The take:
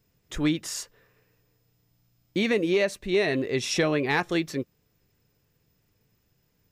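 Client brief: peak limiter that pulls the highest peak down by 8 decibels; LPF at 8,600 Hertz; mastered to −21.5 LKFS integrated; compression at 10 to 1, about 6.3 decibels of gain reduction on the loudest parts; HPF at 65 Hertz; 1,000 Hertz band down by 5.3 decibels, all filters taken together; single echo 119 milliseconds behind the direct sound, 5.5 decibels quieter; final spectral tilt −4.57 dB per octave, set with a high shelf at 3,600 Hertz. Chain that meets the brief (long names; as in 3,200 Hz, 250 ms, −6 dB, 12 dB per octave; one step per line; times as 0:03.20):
high-pass filter 65 Hz
low-pass filter 8,600 Hz
parametric band 1,000 Hz −6.5 dB
high-shelf EQ 3,600 Hz −7 dB
downward compressor 10 to 1, threshold −26 dBFS
brickwall limiter −26.5 dBFS
single-tap delay 119 ms −5.5 dB
level +14 dB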